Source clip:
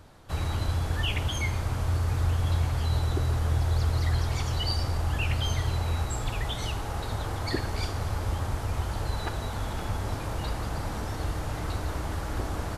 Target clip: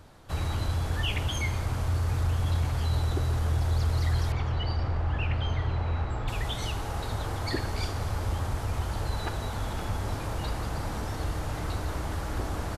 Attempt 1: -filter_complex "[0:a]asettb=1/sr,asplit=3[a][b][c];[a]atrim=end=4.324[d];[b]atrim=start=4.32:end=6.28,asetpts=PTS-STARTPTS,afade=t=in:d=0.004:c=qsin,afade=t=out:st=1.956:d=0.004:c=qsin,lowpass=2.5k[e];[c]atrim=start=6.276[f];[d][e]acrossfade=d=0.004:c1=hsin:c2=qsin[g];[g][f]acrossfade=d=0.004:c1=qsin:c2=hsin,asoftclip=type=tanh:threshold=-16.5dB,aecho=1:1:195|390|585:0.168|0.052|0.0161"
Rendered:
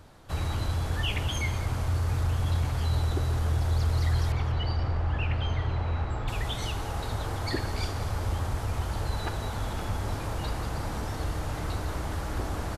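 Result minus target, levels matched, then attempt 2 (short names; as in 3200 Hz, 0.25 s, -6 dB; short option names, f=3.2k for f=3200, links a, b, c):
echo-to-direct +7 dB
-filter_complex "[0:a]asettb=1/sr,asplit=3[a][b][c];[a]atrim=end=4.324[d];[b]atrim=start=4.32:end=6.28,asetpts=PTS-STARTPTS,afade=t=in:d=0.004:c=qsin,afade=t=out:st=1.956:d=0.004:c=qsin,lowpass=2.5k[e];[c]atrim=start=6.276[f];[d][e]acrossfade=d=0.004:c1=hsin:c2=qsin[g];[g][f]acrossfade=d=0.004:c1=qsin:c2=hsin,asoftclip=type=tanh:threshold=-16.5dB,aecho=1:1:195|390:0.075|0.0232"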